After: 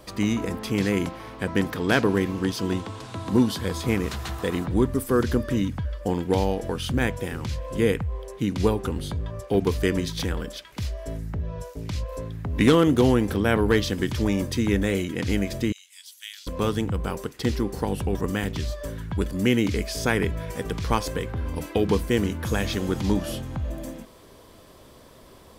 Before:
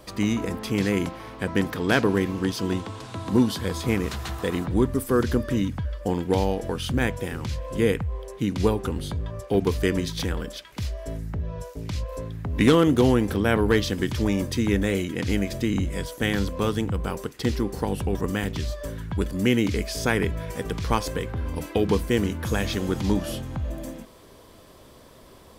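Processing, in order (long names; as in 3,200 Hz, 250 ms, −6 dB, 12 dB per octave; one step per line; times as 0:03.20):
0:15.72–0:16.47: four-pole ladder high-pass 2,500 Hz, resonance 20%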